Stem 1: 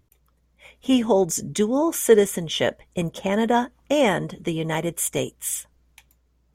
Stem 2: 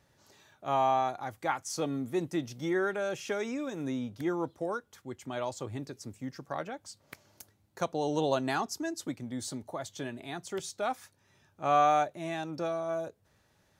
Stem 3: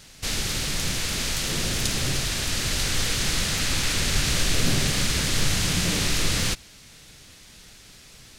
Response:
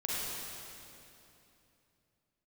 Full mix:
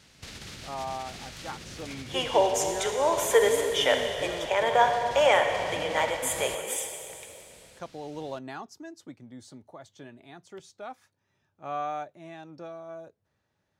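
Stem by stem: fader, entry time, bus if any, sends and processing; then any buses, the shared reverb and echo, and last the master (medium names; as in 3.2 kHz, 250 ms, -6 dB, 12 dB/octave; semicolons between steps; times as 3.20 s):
-1.5 dB, 1.25 s, send -6 dB, high-pass 550 Hz 24 dB/octave
-8.0 dB, 0.00 s, no send, none
-9.5 dB, 0.00 s, no send, peak limiter -18.5 dBFS, peak gain reduction 9.5 dB; compressor with a negative ratio -31 dBFS, ratio -1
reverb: on, RT60 2.9 s, pre-delay 36 ms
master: high-pass 56 Hz; treble shelf 6.9 kHz -11 dB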